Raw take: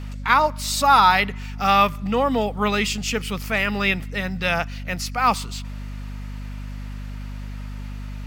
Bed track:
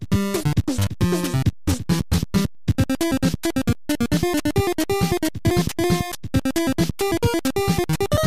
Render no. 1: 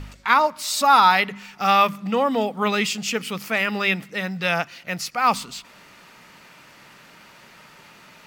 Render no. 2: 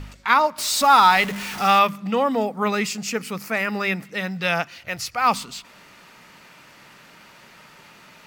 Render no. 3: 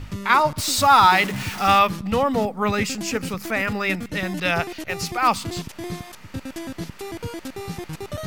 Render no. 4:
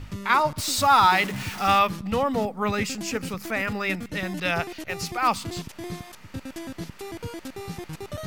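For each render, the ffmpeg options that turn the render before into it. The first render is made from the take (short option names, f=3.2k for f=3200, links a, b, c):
-af "bandreject=f=50:t=h:w=4,bandreject=f=100:t=h:w=4,bandreject=f=150:t=h:w=4,bandreject=f=200:t=h:w=4,bandreject=f=250:t=h:w=4"
-filter_complex "[0:a]asettb=1/sr,asplit=3[a][b][c];[a]atrim=end=0.584[d];[b]atrim=start=0.58:end=1.79,asetpts=PTS-STARTPTS,afade=t=in:d=0.004:c=qsin,afade=t=out:st=1.206:d=0.004:c=qsin,aeval=exprs='val(0)+0.5*0.0422*sgn(val(0))':c=same[e];[c]atrim=start=1.786[f];[d][e]acrossfade=d=0.004:c1=hsin:c2=qsin[g];[g][f]acrossfade=d=0.004:c1=qsin:c2=hsin,asettb=1/sr,asplit=3[h][i][j];[h]atrim=end=2.324[k];[i]atrim=start=2.32:end=4.05,asetpts=PTS-STARTPTS,afade=t=in:d=0.004:c=qsin,afade=t=out:st=1.726:d=0.004:c=qsin,equalizer=f=3.2k:t=o:w=0.54:g=-9.5[l];[j]atrim=start=4.046[m];[k][l]acrossfade=d=0.004:c1=hsin:c2=qsin[n];[n][m]acrossfade=d=0.004:c1=qsin:c2=hsin,asettb=1/sr,asplit=3[o][p][q];[o]atrim=end=4.774[r];[p]atrim=start=4.77:end=5.26,asetpts=PTS-STARTPTS,afade=t=in:d=0.004:c=qsin,afade=t=out:st=0.486:d=0.004:c=qsin,lowshelf=f=130:t=q:w=3:g=10.5[s];[q]atrim=start=5.256[t];[r][s]acrossfade=d=0.004:c1=hsin:c2=qsin[u];[u][t]acrossfade=d=0.004:c1=qsin:c2=hsin"
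-filter_complex "[1:a]volume=-12dB[a];[0:a][a]amix=inputs=2:normalize=0"
-af "volume=-3.5dB"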